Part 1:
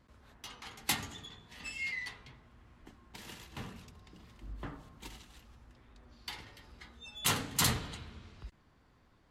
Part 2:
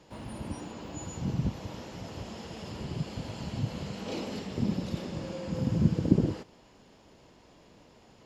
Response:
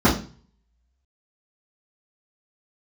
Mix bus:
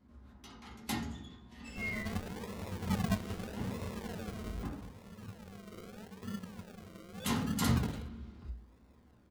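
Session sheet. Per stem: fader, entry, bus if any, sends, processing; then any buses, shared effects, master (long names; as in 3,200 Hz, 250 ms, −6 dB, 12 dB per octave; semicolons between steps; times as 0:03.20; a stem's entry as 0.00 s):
−10.0 dB, 0.00 s, muted 0:04.91–0:07.20, send −17 dB, no processing
0:04.25 −4.5 dB → 0:04.85 −17 dB, 1.65 s, no send, EQ curve with evenly spaced ripples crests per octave 0.87, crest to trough 16 dB; sample-and-hold swept by an LFO 40×, swing 60% 0.8 Hz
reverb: on, RT60 0.40 s, pre-delay 3 ms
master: no processing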